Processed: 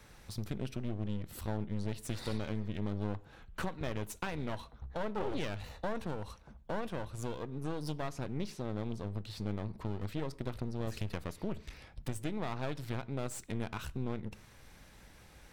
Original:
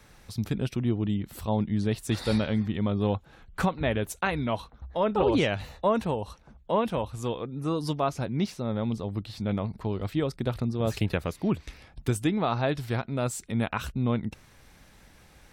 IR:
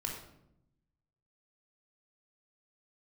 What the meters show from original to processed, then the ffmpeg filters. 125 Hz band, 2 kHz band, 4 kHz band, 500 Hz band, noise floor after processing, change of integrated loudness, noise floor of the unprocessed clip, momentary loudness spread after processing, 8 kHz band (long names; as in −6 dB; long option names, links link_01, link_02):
−9.0 dB, −10.0 dB, −10.0 dB, −11.5 dB, −58 dBFS, −10.5 dB, −56 dBFS, 8 LU, −7.5 dB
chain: -filter_complex "[0:a]acompressor=threshold=-32dB:ratio=2.5,aeval=exprs='clip(val(0),-1,0.00708)':channel_layout=same,asplit=2[link_01][link_02];[1:a]atrim=start_sample=2205,afade=type=out:start_time=0.22:duration=0.01,atrim=end_sample=10143[link_03];[link_02][link_03]afir=irnorm=-1:irlink=0,volume=-17dB[link_04];[link_01][link_04]amix=inputs=2:normalize=0,volume=-3dB"